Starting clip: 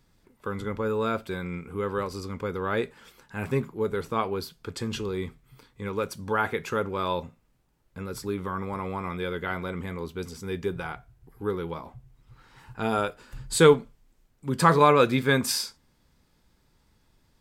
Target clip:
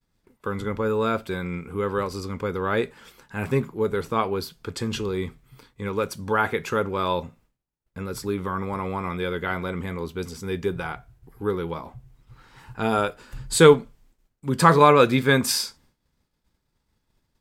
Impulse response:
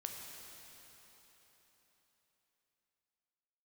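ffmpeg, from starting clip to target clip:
-af "agate=range=0.0224:threshold=0.00178:ratio=3:detection=peak,volume=1.5"

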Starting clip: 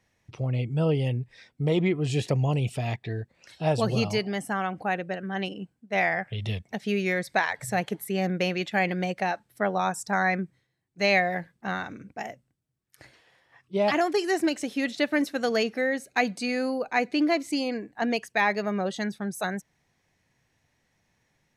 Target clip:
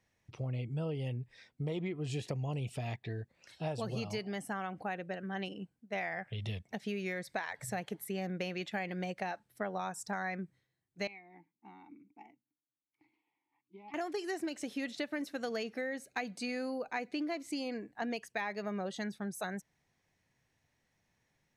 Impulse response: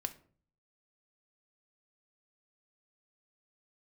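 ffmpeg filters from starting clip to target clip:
-filter_complex "[0:a]acompressor=threshold=0.0447:ratio=6,asettb=1/sr,asplit=3[s0][s1][s2];[s0]atrim=end=11.074[s3];[s1]atrim=start=11.07:end=13.94,asetpts=PTS-STARTPTS,afade=t=in:d=0.004:c=qsin,afade=t=out:st=2.866:d=0.004:c=qsin,asplit=3[s4][s5][s6];[s4]bandpass=f=300:t=q:w=8,volume=1[s7];[s5]bandpass=f=870:t=q:w=8,volume=0.501[s8];[s6]bandpass=f=2240:t=q:w=8,volume=0.355[s9];[s7][s8][s9]amix=inputs=3:normalize=0[s10];[s2]atrim=start=13.936[s11];[s3][s10]acrossfade=d=0.004:c1=hsin:c2=qsin[s12];[s12][s11]acrossfade=d=0.004:c1=qsin:c2=hsin,volume=0.473"

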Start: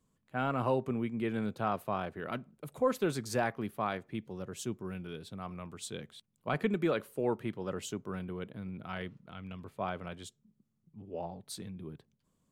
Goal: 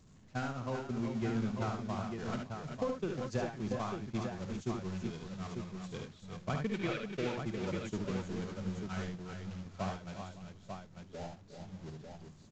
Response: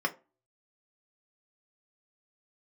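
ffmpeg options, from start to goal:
-filter_complex "[0:a]aeval=exprs='val(0)+0.5*0.0237*sgn(val(0))':c=same,asettb=1/sr,asplit=3[s0][s1][s2];[s0]atrim=end=6.694[s3];[s1]atrim=start=6.69:end=7.32,asetpts=PTS-STARTPTS,afade=t=in:d=0.004:c=qsin,afade=t=out:st=0.626:d=0.004:c=qsin,equalizer=f=2500:w=0.73:g=12.5[s4];[s2]atrim=start=7.316[s5];[s3][s4]acrossfade=d=0.004:c1=hsin:c2=qsin[s6];[s6][s5]acrossfade=d=0.004:c1=qsin:c2=hsin,asettb=1/sr,asplit=3[s7][s8][s9];[s7]atrim=end=10.994[s10];[s8]atrim=start=10.99:end=11.72,asetpts=PTS-STARTPTS,afade=t=in:d=0.004:c=qsin,afade=t=out:st=0.726:d=0.004:c=qsin,tremolo=f=76:d=0.261[s11];[s9]atrim=start=11.716[s12];[s10][s11]acrossfade=d=0.004:c1=hsin:c2=qsin[s13];[s13][s12]acrossfade=d=0.004:c1=qsin:c2=hsin,acompressor=threshold=0.0251:ratio=16,aresample=16000,aresample=44100,agate=range=0.0398:threshold=0.02:ratio=16:detection=peak,bass=f=250:g=8,treble=f=4000:g=4,asplit=2[s14][s15];[s15]aecho=0:1:53|73|357|387|558|895:0.335|0.531|0.237|0.447|0.1|0.501[s16];[s14][s16]amix=inputs=2:normalize=0"

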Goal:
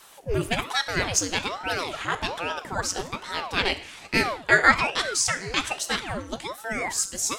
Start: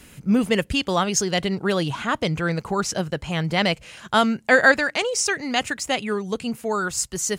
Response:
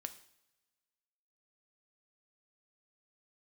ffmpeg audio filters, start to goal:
-filter_complex "[0:a]tiltshelf=f=970:g=-4[s0];[1:a]atrim=start_sample=2205[s1];[s0][s1]afir=irnorm=-1:irlink=0,aeval=exprs='val(0)*sin(2*PI*610*n/s+610*0.85/1.2*sin(2*PI*1.2*n/s))':c=same,volume=1.26"

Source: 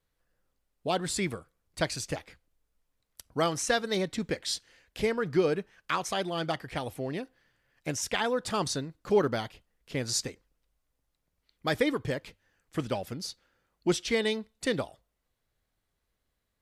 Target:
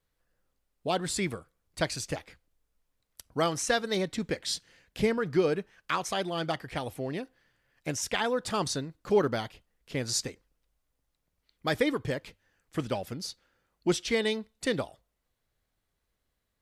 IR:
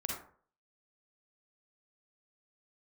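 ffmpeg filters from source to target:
-filter_complex "[0:a]asettb=1/sr,asplit=3[s0][s1][s2];[s0]atrim=end=4.434[s3];[s1]atrim=start=4.43:end=5.18,asetpts=PTS-STARTPTS,afade=t=in:d=0.004:c=qsin,afade=t=out:st=0.746:d=0.004:c=qsin,equalizer=f=160:w=1.3:g=8.5[s4];[s2]atrim=start=5.176[s5];[s3][s4]acrossfade=d=0.004:c1=hsin:c2=qsin[s6];[s6][s5]acrossfade=d=0.004:c1=qsin:c2=hsin"

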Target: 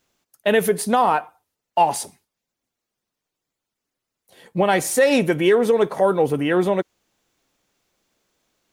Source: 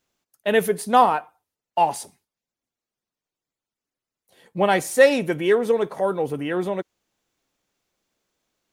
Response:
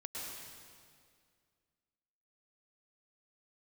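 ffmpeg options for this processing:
-af "alimiter=limit=0.211:level=0:latency=1:release=109,volume=2"

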